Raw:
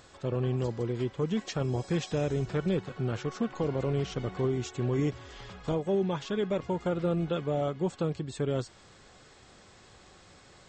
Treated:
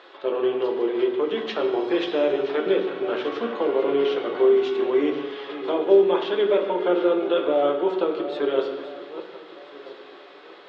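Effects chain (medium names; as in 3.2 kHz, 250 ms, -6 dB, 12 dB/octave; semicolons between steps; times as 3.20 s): backward echo that repeats 662 ms, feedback 45%, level -12.5 dB; elliptic band-pass 370–3600 Hz, stop band 60 dB; on a send: reverberation RT60 1.0 s, pre-delay 3 ms, DRR 3 dB; on the sum: trim +8.5 dB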